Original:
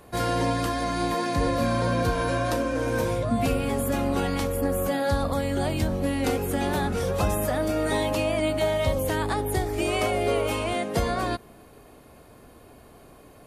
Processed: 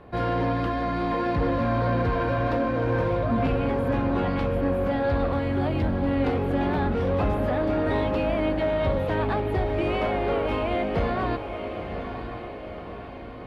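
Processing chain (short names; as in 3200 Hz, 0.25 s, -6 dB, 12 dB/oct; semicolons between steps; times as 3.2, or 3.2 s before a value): soft clip -21.5 dBFS, distortion -15 dB; air absorption 360 m; on a send: diffused feedback echo 0.988 s, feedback 55%, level -8 dB; on the sum: gain +3.5 dB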